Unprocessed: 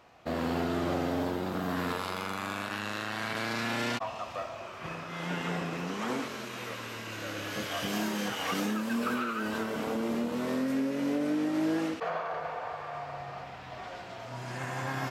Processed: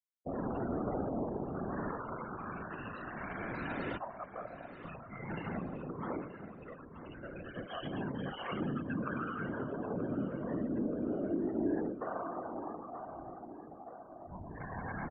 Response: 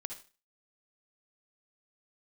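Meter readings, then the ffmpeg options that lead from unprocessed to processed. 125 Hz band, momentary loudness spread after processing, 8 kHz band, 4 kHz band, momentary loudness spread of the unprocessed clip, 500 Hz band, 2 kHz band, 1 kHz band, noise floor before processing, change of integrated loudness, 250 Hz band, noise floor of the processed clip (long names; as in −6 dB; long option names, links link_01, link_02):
−3.5 dB, 13 LU, below −35 dB, −16.5 dB, 10 LU, −4.5 dB, −9.5 dB, −7.0 dB, −43 dBFS, −6.0 dB, −5.5 dB, −51 dBFS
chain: -filter_complex "[0:a]afftfilt=real='re*gte(hypot(re,im),0.0355)':imag='im*gte(hypot(re,im),0.0355)':win_size=1024:overlap=0.75,afftfilt=real='hypot(re,im)*cos(2*PI*random(0))':imag='hypot(re,im)*sin(2*PI*random(1))':win_size=512:overlap=0.75,asplit=2[link_01][link_02];[link_02]adelay=928,lowpass=frequency=3400:poles=1,volume=-12.5dB,asplit=2[link_03][link_04];[link_04]adelay=928,lowpass=frequency=3400:poles=1,volume=0.52,asplit=2[link_05][link_06];[link_06]adelay=928,lowpass=frequency=3400:poles=1,volume=0.52,asplit=2[link_07][link_08];[link_08]adelay=928,lowpass=frequency=3400:poles=1,volume=0.52,asplit=2[link_09][link_10];[link_10]adelay=928,lowpass=frequency=3400:poles=1,volume=0.52[link_11];[link_01][link_03][link_05][link_07][link_09][link_11]amix=inputs=6:normalize=0,adynamicequalizer=threshold=0.002:dfrequency=2100:dqfactor=0.7:tfrequency=2100:tqfactor=0.7:attack=5:release=100:ratio=0.375:range=2.5:mode=cutabove:tftype=highshelf,volume=1dB"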